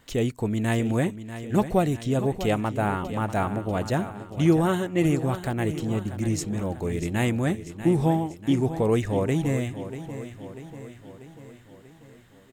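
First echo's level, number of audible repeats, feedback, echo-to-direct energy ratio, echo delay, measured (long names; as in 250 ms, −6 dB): −12.0 dB, 5, 56%, −10.5 dB, 641 ms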